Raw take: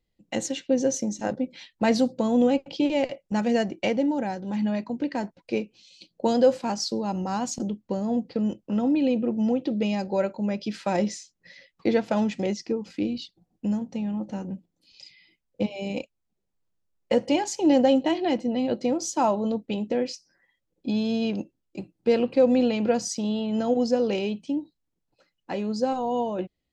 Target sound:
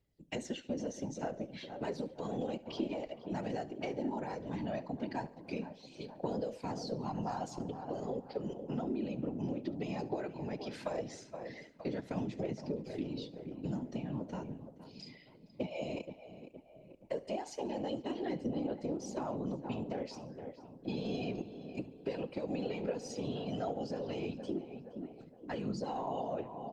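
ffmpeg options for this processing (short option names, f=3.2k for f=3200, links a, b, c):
-filter_complex "[0:a]acrossover=split=200|1400|4500[a][b][c][d];[a]acompressor=threshold=-41dB:ratio=4[e];[b]acompressor=threshold=-21dB:ratio=4[f];[c]acompressor=threshold=-41dB:ratio=4[g];[d]acompressor=threshold=-46dB:ratio=4[h];[e][f][g][h]amix=inputs=4:normalize=0,asplit=3[i][j][k];[i]afade=t=out:st=7.4:d=0.02[l];[j]aecho=1:1:2.6:0.31,afade=t=in:st=7.4:d=0.02,afade=t=out:st=8.23:d=0.02[m];[k]afade=t=in:st=8.23:d=0.02[n];[l][m][n]amix=inputs=3:normalize=0,asplit=3[o][p][q];[o]afade=t=out:st=19.33:d=0.02[r];[p]adynamicequalizer=threshold=0.00316:dfrequency=3300:dqfactor=0.84:tfrequency=3300:tqfactor=0.84:attack=5:release=100:ratio=0.375:range=2:mode=cutabove:tftype=bell,afade=t=in:st=19.33:d=0.02,afade=t=out:st=19.81:d=0.02[s];[q]afade=t=in:st=19.81:d=0.02[t];[r][s][t]amix=inputs=3:normalize=0,aphaser=in_gain=1:out_gain=1:delay=3.5:decay=0.42:speed=0.16:type=triangular,asplit=2[u][v];[v]adelay=468,lowpass=f=2.1k:p=1,volume=-13.5dB,asplit=2[w][x];[x]adelay=468,lowpass=f=2.1k:p=1,volume=0.48,asplit=2[y][z];[z]adelay=468,lowpass=f=2.1k:p=1,volume=0.48,asplit=2[aa][ab];[ab]adelay=468,lowpass=f=2.1k:p=1,volume=0.48,asplit=2[ac][ad];[ad]adelay=468,lowpass=f=2.1k:p=1,volume=0.48[ae];[w][y][aa][ac][ae]amix=inputs=5:normalize=0[af];[u][af]amix=inputs=2:normalize=0,acompressor=threshold=-30dB:ratio=5,afftfilt=real='hypot(re,im)*cos(2*PI*random(0))':imag='hypot(re,im)*sin(2*PI*random(1))':win_size=512:overlap=0.75,equalizer=f=97:t=o:w=0.34:g=-2.5,asplit=2[ag][ah];[ah]aecho=0:1:71|142|213|284:0.1|0.053|0.0281|0.0149[ai];[ag][ai]amix=inputs=2:normalize=0,volume=1.5dB" -ar 48000 -c:a libopus -b:a 48k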